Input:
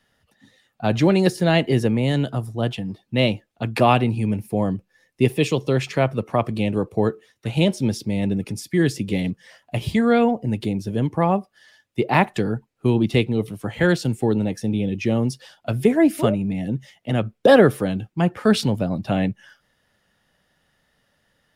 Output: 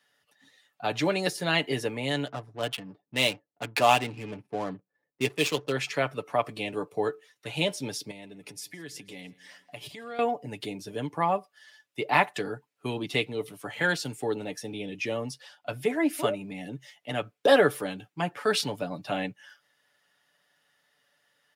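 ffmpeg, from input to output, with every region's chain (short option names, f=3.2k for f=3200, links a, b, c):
-filter_complex "[0:a]asettb=1/sr,asplit=3[a][b][c];[a]atrim=end=2.264[d];[b]atrim=start=2.26:end=5.72,asetpts=PTS-STARTPTS,afade=t=in:d=0.004:c=qsin,afade=t=out:st=3.456:d=0.004:c=qsin,aemphasis=mode=production:type=cd,adynamicsmooth=sensitivity=6:basefreq=560[e];[c]atrim=start=5.716[f];[d][e]acrossfade=d=0.004:c1=hsin:c2=qsin[g];[g][f]acrossfade=d=0.004:c1=qsin:c2=hsin,asettb=1/sr,asplit=3[h][i][j];[h]atrim=end=8.114[k];[i]atrim=start=8.11:end=10.19,asetpts=PTS-STARTPTS,afade=t=in:d=0.004:c=qsin,afade=t=out:st=2.076:d=0.004:c=qsin,acompressor=threshold=-33dB:ratio=3:attack=3.2:release=140:knee=1:detection=peak,aecho=1:1:163|326|489|652:0.0794|0.0429|0.0232|0.0125,atrim=end_sample=91728[l];[j]atrim=start=10.186[m];[k][l]acrossfade=d=0.004:c1=hsin:c2=qsin[n];[n][m]acrossfade=d=0.004:c1=qsin:c2=hsin,asettb=1/sr,asplit=3[o][p][q];[o]atrim=end=15.164[r];[p]atrim=start=15.16:end=16.13,asetpts=PTS-STARTPTS,afade=t=in:d=0.004:c=qsin,afade=t=out:st=0.966:d=0.004:c=qsin,highshelf=f=4.7k:g=-5.5,bandreject=f=390:w=6.9[s];[q]atrim=start=16.126[t];[r][s]acrossfade=d=0.004:c1=hsin:c2=qsin[u];[u][t]acrossfade=d=0.004:c1=qsin:c2=hsin,highpass=f=800:p=1,aecho=1:1:6.9:0.53,volume=-2.5dB"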